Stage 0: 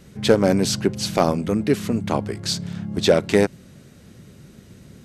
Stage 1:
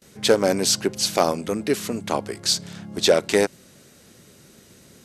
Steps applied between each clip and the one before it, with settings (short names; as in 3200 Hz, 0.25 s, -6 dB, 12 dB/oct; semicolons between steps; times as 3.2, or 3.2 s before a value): gate with hold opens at -40 dBFS; tone controls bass -11 dB, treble +6 dB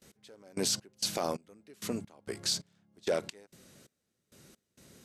limiter -12.5 dBFS, peak gain reduction 9 dB; step gate "x....xx..xx" 132 bpm -24 dB; gain -7 dB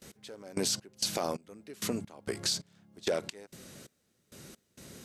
compressor 2:1, threshold -41 dBFS, peak gain reduction 9 dB; gain +7.5 dB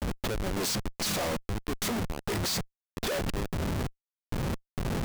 Schmitt trigger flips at -44 dBFS; gain +8 dB